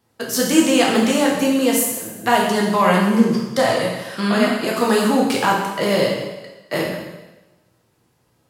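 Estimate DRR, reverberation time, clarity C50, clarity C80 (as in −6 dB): −3.0 dB, 1.1 s, 2.5 dB, 5.0 dB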